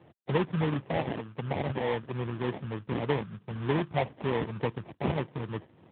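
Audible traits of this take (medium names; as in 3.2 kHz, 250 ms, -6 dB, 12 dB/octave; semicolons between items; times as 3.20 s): phasing stages 4, 3.3 Hz, lowest notch 560–2300 Hz; aliases and images of a low sample rate 1.4 kHz, jitter 20%; AMR-NB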